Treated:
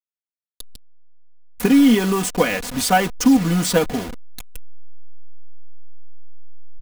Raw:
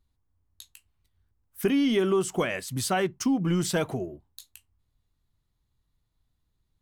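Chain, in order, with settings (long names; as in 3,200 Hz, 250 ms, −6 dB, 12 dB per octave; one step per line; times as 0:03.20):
hold until the input has moved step −31.5 dBFS
comb filter 4.1 ms, depth 77%
in parallel at −3 dB: output level in coarse steps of 11 dB
on the sum: level +4 dB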